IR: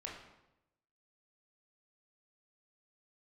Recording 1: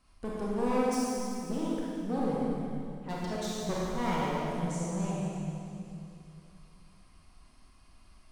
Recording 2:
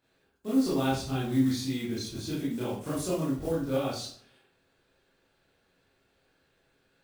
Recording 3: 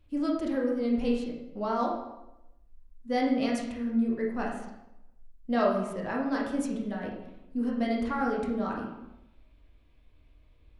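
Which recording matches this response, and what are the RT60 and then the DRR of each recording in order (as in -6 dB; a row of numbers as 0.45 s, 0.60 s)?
3; 2.7 s, 0.55 s, 0.90 s; -6.5 dB, -8.5 dB, -2.5 dB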